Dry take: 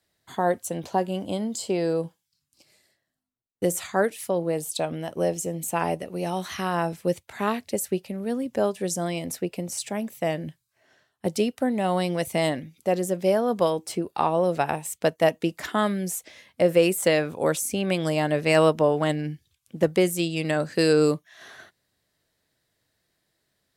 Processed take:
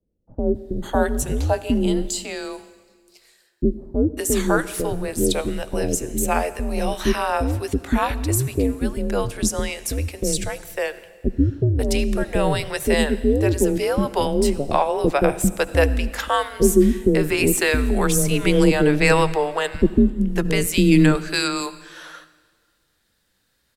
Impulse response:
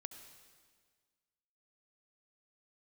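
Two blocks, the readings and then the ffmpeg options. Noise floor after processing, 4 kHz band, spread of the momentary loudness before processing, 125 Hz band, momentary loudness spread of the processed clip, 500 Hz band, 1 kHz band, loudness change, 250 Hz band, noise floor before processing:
−68 dBFS, +5.5 dB, 9 LU, +8.0 dB, 10 LU, +2.5 dB, +3.0 dB, +4.5 dB, +7.0 dB, −78 dBFS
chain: -filter_complex "[0:a]afreqshift=-140,acrossover=split=470[link_01][link_02];[link_02]adelay=550[link_03];[link_01][link_03]amix=inputs=2:normalize=0,asplit=2[link_04][link_05];[1:a]atrim=start_sample=2205[link_06];[link_05][link_06]afir=irnorm=-1:irlink=0,volume=0.5dB[link_07];[link_04][link_07]amix=inputs=2:normalize=0,volume=2.5dB"

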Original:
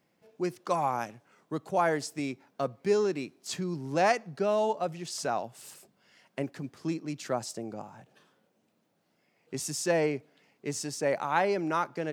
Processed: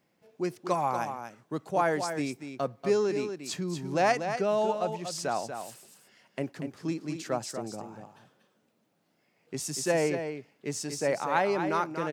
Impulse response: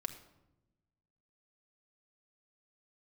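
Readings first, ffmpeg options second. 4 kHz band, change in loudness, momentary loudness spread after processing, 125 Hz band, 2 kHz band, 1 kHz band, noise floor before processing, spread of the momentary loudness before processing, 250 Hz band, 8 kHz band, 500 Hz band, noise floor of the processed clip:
+0.5 dB, +0.5 dB, 12 LU, +0.5 dB, +0.5 dB, +0.5 dB, −73 dBFS, 13 LU, +0.5 dB, +0.5 dB, +0.5 dB, −72 dBFS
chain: -af "aecho=1:1:239:0.398"

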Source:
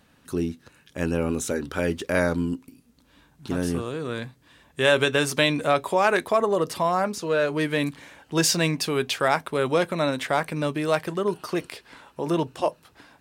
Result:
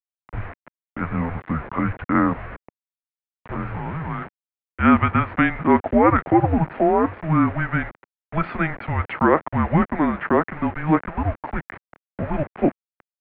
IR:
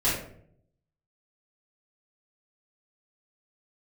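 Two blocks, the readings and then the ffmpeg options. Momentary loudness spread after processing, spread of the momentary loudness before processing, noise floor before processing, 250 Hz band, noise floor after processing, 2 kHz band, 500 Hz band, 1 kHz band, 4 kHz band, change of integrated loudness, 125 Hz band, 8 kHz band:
15 LU, 12 LU, −60 dBFS, +6.5 dB, below −85 dBFS, 0.0 dB, −1.0 dB, +5.0 dB, below −15 dB, +3.0 dB, +6.0 dB, below −40 dB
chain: -af "aresample=11025,acrusher=bits=5:mix=0:aa=0.000001,aresample=44100,highpass=frequency=440:width_type=q:width=0.5412,highpass=frequency=440:width_type=q:width=1.307,lowpass=frequency=2300:width_type=q:width=0.5176,lowpass=frequency=2300:width_type=q:width=0.7071,lowpass=frequency=2300:width_type=q:width=1.932,afreqshift=-320,volume=6dB"

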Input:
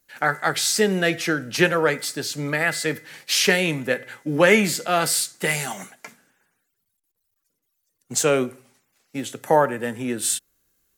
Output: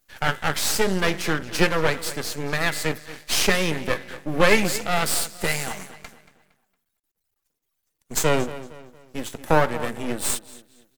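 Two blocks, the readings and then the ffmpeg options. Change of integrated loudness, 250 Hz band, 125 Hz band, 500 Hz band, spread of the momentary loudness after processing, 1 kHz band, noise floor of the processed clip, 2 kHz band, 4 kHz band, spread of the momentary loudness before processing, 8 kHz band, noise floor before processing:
−2.0 dB, −2.5 dB, +0.5 dB, −2.5 dB, 13 LU, −1.0 dB, −78 dBFS, −2.0 dB, −1.5 dB, 13 LU, −2.5 dB, −76 dBFS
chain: -filter_complex "[0:a]asplit=2[link_01][link_02];[link_02]adelay=230,lowpass=frequency=4000:poles=1,volume=-15dB,asplit=2[link_03][link_04];[link_04]adelay=230,lowpass=frequency=4000:poles=1,volume=0.4,asplit=2[link_05][link_06];[link_06]adelay=230,lowpass=frequency=4000:poles=1,volume=0.4,asplit=2[link_07][link_08];[link_08]adelay=230,lowpass=frequency=4000:poles=1,volume=0.4[link_09];[link_01][link_03][link_05][link_07][link_09]amix=inputs=5:normalize=0,aeval=exprs='max(val(0),0)':channel_layout=same,volume=2.5dB"

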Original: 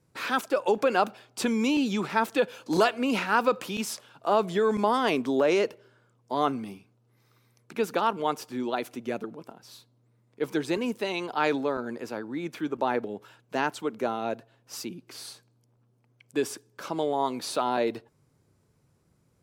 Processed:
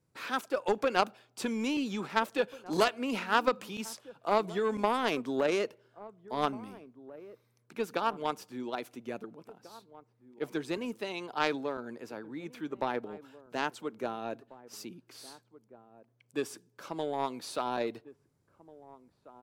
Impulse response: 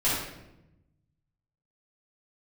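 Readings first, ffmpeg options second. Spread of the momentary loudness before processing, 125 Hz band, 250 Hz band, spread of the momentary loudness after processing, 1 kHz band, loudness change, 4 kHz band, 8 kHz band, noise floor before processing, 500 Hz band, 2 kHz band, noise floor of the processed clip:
14 LU, −6.0 dB, −6.5 dB, 20 LU, −5.0 dB, −5.5 dB, −4.0 dB, −6.5 dB, −67 dBFS, −5.5 dB, −4.5 dB, −72 dBFS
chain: -filter_complex "[0:a]aeval=exprs='0.335*(cos(1*acos(clip(val(0)/0.335,-1,1)))-cos(1*PI/2))+0.0668*(cos(3*acos(clip(val(0)/0.335,-1,1)))-cos(3*PI/2))':channel_layout=same,asplit=2[link_01][link_02];[link_02]adelay=1691,volume=-18dB,highshelf=frequency=4000:gain=-38[link_03];[link_01][link_03]amix=inputs=2:normalize=0"

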